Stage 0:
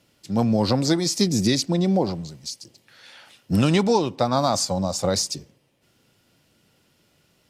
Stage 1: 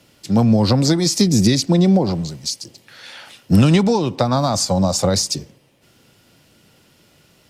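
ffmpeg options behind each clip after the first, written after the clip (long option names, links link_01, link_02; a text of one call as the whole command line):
ffmpeg -i in.wav -filter_complex "[0:a]acrossover=split=190[link_01][link_02];[link_02]acompressor=threshold=-24dB:ratio=10[link_03];[link_01][link_03]amix=inputs=2:normalize=0,volume=9dB" out.wav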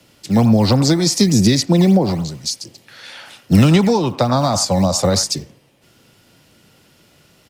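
ffmpeg -i in.wav -filter_complex "[0:a]acrossover=split=160|680|1900[link_01][link_02][link_03][link_04];[link_01]acrusher=samples=13:mix=1:aa=0.000001:lfo=1:lforange=20.8:lforate=3.4[link_05];[link_03]aecho=1:1:91:0.531[link_06];[link_05][link_02][link_06][link_04]amix=inputs=4:normalize=0,volume=1.5dB" out.wav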